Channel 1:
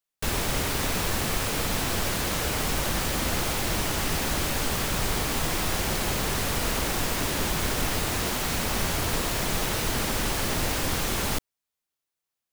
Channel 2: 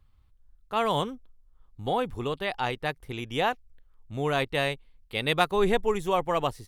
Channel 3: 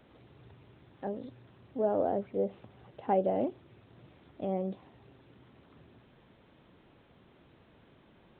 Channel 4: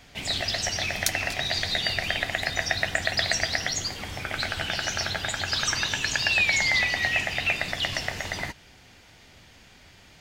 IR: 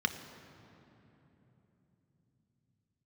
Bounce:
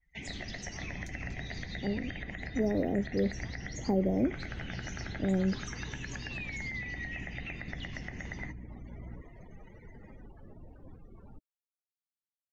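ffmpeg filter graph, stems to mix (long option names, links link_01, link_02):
-filter_complex "[0:a]alimiter=limit=-18dB:level=0:latency=1:release=83,volume=-17.5dB[link_01];[1:a]highpass=800,volume=-18dB[link_02];[2:a]lowshelf=frequency=490:gain=7,acrusher=samples=3:mix=1:aa=0.000001,aeval=exprs='val(0)+0.00447*(sin(2*PI*60*n/s)+sin(2*PI*2*60*n/s)/2+sin(2*PI*3*60*n/s)/3+sin(2*PI*4*60*n/s)/4+sin(2*PI*5*60*n/s)/5)':channel_layout=same,adelay=800,volume=2dB[link_03];[3:a]equalizer=frequency=100:width_type=o:width=0.33:gain=-11,equalizer=frequency=630:width_type=o:width=0.33:gain=-4,equalizer=frequency=2000:width_type=o:width=0.33:gain=9,equalizer=frequency=6300:width_type=o:width=0.33:gain=11,alimiter=limit=-10dB:level=0:latency=1:release=73,adynamicequalizer=threshold=0.0224:dfrequency=4100:dqfactor=0.7:tfrequency=4100:tqfactor=0.7:attack=5:release=100:ratio=0.375:range=2:mode=cutabove:tftype=highshelf,volume=-3dB[link_04];[link_01][link_02][link_03][link_04]amix=inputs=4:normalize=0,afftdn=noise_reduction=35:noise_floor=-43,highshelf=frequency=3000:gain=-10,acrossover=split=380[link_05][link_06];[link_06]acompressor=threshold=-44dB:ratio=3[link_07];[link_05][link_07]amix=inputs=2:normalize=0"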